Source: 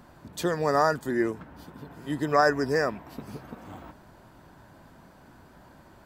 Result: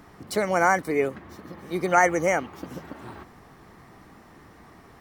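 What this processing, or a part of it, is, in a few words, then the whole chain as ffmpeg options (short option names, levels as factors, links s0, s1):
nightcore: -af "asetrate=53361,aresample=44100,volume=1.33"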